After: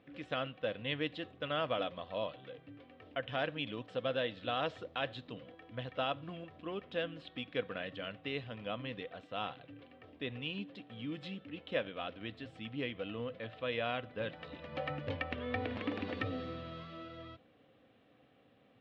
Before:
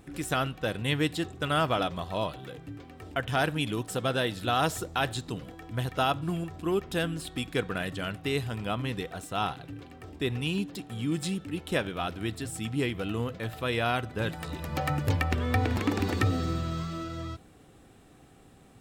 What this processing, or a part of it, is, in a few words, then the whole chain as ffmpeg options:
kitchen radio: -af "highpass=160,equalizer=f=170:t=q:w=4:g=-7,equalizer=f=370:t=q:w=4:g=-10,equalizer=f=530:t=q:w=4:g=7,equalizer=f=860:t=q:w=4:g=-7,equalizer=f=1.4k:t=q:w=4:g=-4,equalizer=f=3.1k:t=q:w=4:g=3,lowpass=f=3.5k:w=0.5412,lowpass=f=3.5k:w=1.3066,volume=-7dB"

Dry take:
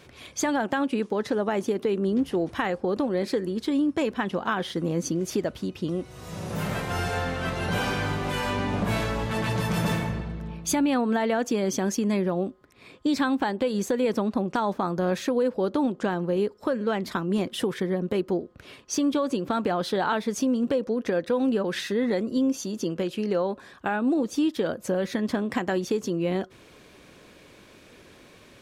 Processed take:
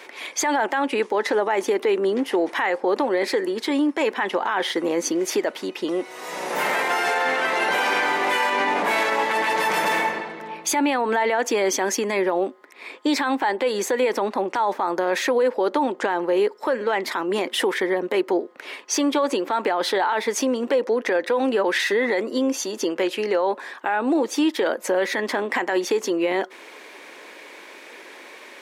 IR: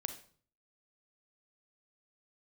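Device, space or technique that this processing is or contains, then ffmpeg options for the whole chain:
laptop speaker: -af "highpass=f=320:w=0.5412,highpass=f=320:w=1.3066,equalizer=f=890:t=o:w=0.35:g=8,equalizer=f=2k:t=o:w=0.56:g=9,alimiter=limit=-20.5dB:level=0:latency=1:release=25,volume=7.5dB"

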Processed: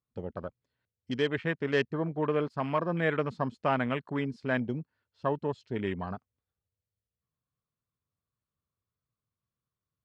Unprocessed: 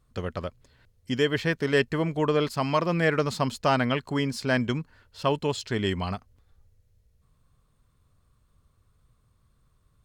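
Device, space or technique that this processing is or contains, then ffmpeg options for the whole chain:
over-cleaned archive recording: -af "highpass=110,lowpass=5.2k,afwtdn=0.02,volume=-4.5dB"

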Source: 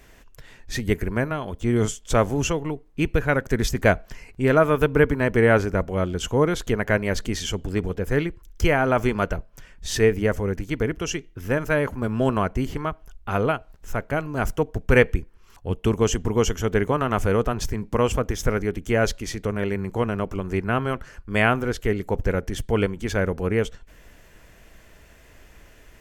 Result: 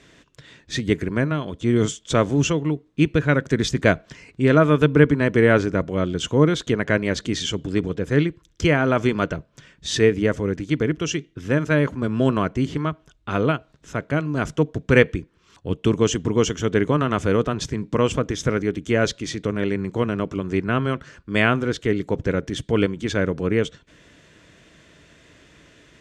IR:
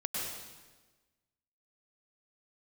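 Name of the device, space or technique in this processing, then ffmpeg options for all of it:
car door speaker: -af "highpass=94,equalizer=f=150:t=q:w=4:g=7,equalizer=f=300:t=q:w=4:g=6,equalizer=f=800:t=q:w=4:g=-7,equalizer=f=3.6k:t=q:w=4:g=7,lowpass=f=8.3k:w=0.5412,lowpass=f=8.3k:w=1.3066,volume=1dB"

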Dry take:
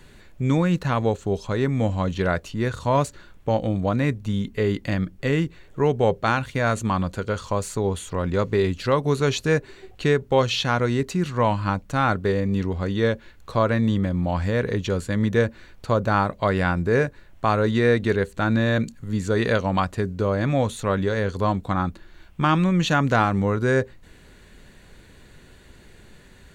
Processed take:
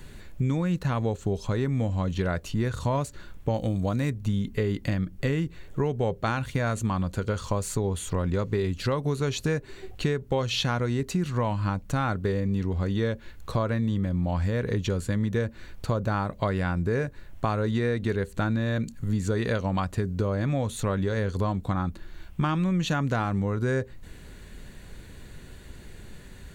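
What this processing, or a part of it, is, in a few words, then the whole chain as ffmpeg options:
ASMR close-microphone chain: -filter_complex "[0:a]lowshelf=f=210:g=6.5,acompressor=threshold=-23dB:ratio=5,highshelf=f=8.9k:g=7,asettb=1/sr,asplit=3[a][b][c];[a]atrim=end=3.544[d];[b]atrim=start=3.54:end=4.1,asetpts=PTS-STARTPTS,afade=t=in:d=0.004:c=qsin,afade=t=out:st=0.556:d=0.004:c=qsin,bass=f=250:g=0,treble=f=4k:g=9[e];[c]atrim=start=4.096[f];[d][e]acrossfade=d=0.004:c1=hsin:c2=qsin[g];[g][f]acrossfade=d=0.004:c1=qsin:c2=hsin"

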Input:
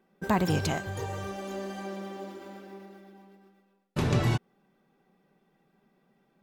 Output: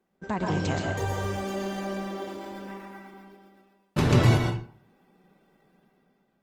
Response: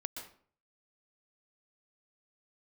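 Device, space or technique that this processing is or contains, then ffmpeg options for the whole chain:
speakerphone in a meeting room: -filter_complex "[0:a]asettb=1/sr,asplit=3[a][b][c];[a]atrim=end=2.684[d];[b]atrim=start=2.68:end=3.14,asetpts=PTS-STARTPTS,afade=t=in:d=0.004:c=qsin,afade=t=out:st=0.456:d=0.004:c=qsin,equalizer=f=125:t=o:w=1:g=-10,equalizer=f=250:t=o:w=1:g=5,equalizer=f=500:t=o:w=1:g=-10,equalizer=f=1k:t=o:w=1:g=8,equalizer=f=2k:t=o:w=1:g=6,equalizer=f=4k:t=o:w=1:g=-5,equalizer=f=8k:t=o:w=1:g=3[e];[c]atrim=start=3.136[f];[d][e]acrossfade=d=0.004:c1=hsin:c2=qsin[g];[g][f]acrossfade=d=0.004:c1=qsin:c2=hsin[h];[1:a]atrim=start_sample=2205[i];[h][i]afir=irnorm=-1:irlink=0,dynaudnorm=f=210:g=7:m=10dB,volume=-3dB" -ar 48000 -c:a libopus -b:a 20k

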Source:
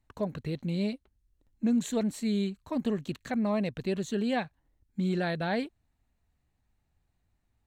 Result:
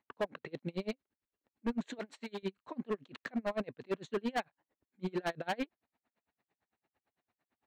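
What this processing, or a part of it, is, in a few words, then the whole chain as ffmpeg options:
helicopter radio: -filter_complex "[0:a]highpass=330,lowpass=2.8k,aeval=exprs='val(0)*pow(10,-35*(0.5-0.5*cos(2*PI*8.9*n/s))/20)':c=same,asoftclip=type=hard:threshold=-36dB,asettb=1/sr,asplit=3[a][b][c];[a]atrim=end=1.994[d];[b]atrim=start=1.99:end=2.43,asetpts=PTS-STARTPTS,afade=t=in:d=0.004:c=qsin,afade=t=out:st=0.436:d=0.004:c=qsin,highpass=f=610:p=1[e];[c]atrim=start=2.426[f];[d][e]acrossfade=d=0.004:c1=hsin:c2=qsin[g];[g][f]acrossfade=d=0.004:c1=qsin:c2=hsin,volume=7.5dB"

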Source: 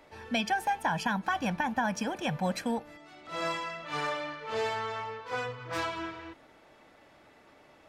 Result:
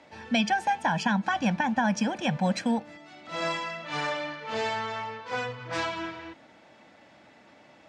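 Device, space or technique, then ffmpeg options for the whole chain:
car door speaker: -af "highpass=100,equalizer=f=210:t=q:w=4:g=5,equalizer=f=410:t=q:w=4:g=-7,equalizer=f=1.2k:t=q:w=4:g=-5,lowpass=f=7.9k:w=0.5412,lowpass=f=7.9k:w=1.3066,volume=4dB"

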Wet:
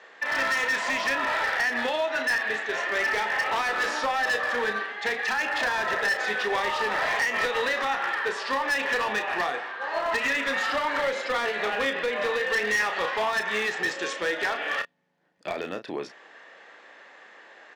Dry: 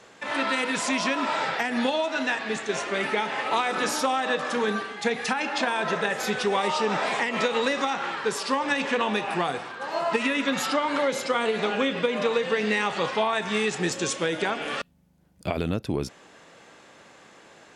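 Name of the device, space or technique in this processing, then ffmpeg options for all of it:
megaphone: -filter_complex "[0:a]highpass=450,lowpass=3.8k,equalizer=f=1.8k:t=o:w=0.2:g=11.5,asoftclip=type=hard:threshold=-22dB,asplit=2[a][b];[b]adelay=33,volume=-8.5dB[c];[a][c]amix=inputs=2:normalize=0"

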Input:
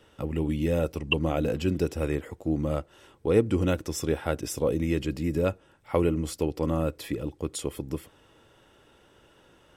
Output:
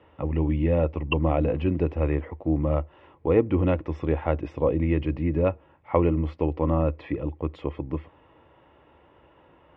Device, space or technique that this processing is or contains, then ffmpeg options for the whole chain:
bass cabinet: -af "highpass=61,equalizer=f=76:t=q:w=4:g=6,equalizer=f=110:t=q:w=4:g=-7,equalizer=f=210:t=q:w=4:g=-7,equalizer=f=410:t=q:w=4:g=-5,equalizer=f=990:t=q:w=4:g=4,equalizer=f=1.5k:t=q:w=4:g=-10,lowpass=f=2.3k:w=0.5412,lowpass=f=2.3k:w=1.3066,volume=4.5dB"

